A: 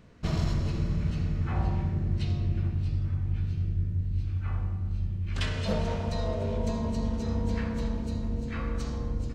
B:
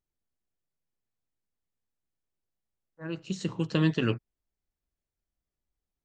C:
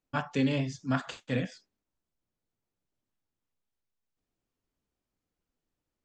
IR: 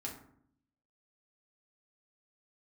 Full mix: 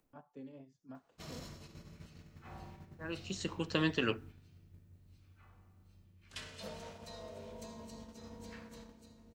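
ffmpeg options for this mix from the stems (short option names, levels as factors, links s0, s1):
-filter_complex "[0:a]aemphasis=mode=production:type=bsi,adelay=950,volume=0.188,asplit=2[s0][s1];[s1]volume=0.0794[s2];[1:a]highpass=f=470:p=1,volume=0.841,asplit=2[s3][s4];[s4]volume=0.15[s5];[2:a]acompressor=mode=upward:threshold=0.0251:ratio=2.5,equalizer=f=4400:w=0.39:g=-7.5,acrossover=split=220|1000[s6][s7][s8];[s6]acompressor=threshold=0.00316:ratio=4[s9];[s7]acompressor=threshold=0.0224:ratio=4[s10];[s8]acompressor=threshold=0.00141:ratio=4[s11];[s9][s10][s11]amix=inputs=3:normalize=0,volume=0.188[s12];[3:a]atrim=start_sample=2205[s13];[s2][s5]amix=inputs=2:normalize=0[s14];[s14][s13]afir=irnorm=-1:irlink=0[s15];[s0][s3][s12][s15]amix=inputs=4:normalize=0,agate=range=0.447:threshold=0.00316:ratio=16:detection=peak"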